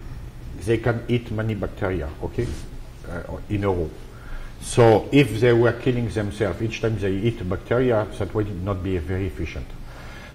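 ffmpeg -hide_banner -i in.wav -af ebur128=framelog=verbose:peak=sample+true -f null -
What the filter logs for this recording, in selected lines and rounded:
Integrated loudness:
  I:         -22.9 LUFS
  Threshold: -33.7 LUFS
Loudness range:
  LRA:         7.6 LU
  Threshold: -43.0 LUFS
  LRA low:   -28.0 LUFS
  LRA high:  -20.4 LUFS
Sample peak:
  Peak:       -6.2 dBFS
True peak:
  Peak:       -6.2 dBFS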